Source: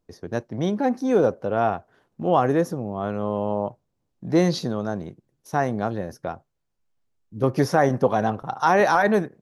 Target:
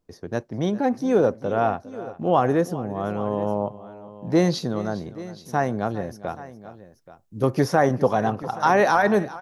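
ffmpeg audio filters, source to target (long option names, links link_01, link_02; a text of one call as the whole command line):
ffmpeg -i in.wav -filter_complex "[0:a]asettb=1/sr,asplit=3[link_01][link_02][link_03];[link_01]atrim=end=6.274[link_04];[link_02]atrim=start=6.27:end=7.55,asetpts=PTS-STARTPTS,afade=type=in:duration=0.004:curve=qsin,afade=type=out:start_time=1.276:duration=0.004:curve=qsin,highshelf=frequency=5800:gain=10[link_05];[link_03]atrim=start=7.546[link_06];[link_04][link_05]acrossfade=duration=0.004:curve1=hsin:curve2=qsin[link_07];[link_07][link_06]acrossfade=duration=0.004:curve1=qsin:curve2=hsin,aecho=1:1:406|828:0.133|0.141" out.wav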